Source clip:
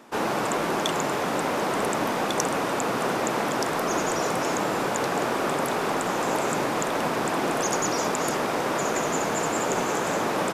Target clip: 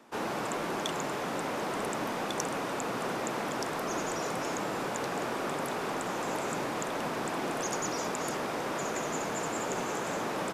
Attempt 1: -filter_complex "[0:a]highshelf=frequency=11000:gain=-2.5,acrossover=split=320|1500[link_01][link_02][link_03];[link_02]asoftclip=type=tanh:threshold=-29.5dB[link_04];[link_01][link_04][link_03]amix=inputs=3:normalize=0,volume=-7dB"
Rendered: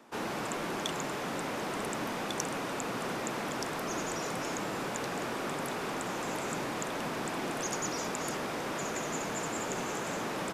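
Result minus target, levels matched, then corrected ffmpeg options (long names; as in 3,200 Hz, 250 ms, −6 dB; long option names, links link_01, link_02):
soft clipping: distortion +10 dB
-filter_complex "[0:a]highshelf=frequency=11000:gain=-2.5,acrossover=split=320|1500[link_01][link_02][link_03];[link_02]asoftclip=type=tanh:threshold=-21dB[link_04];[link_01][link_04][link_03]amix=inputs=3:normalize=0,volume=-7dB"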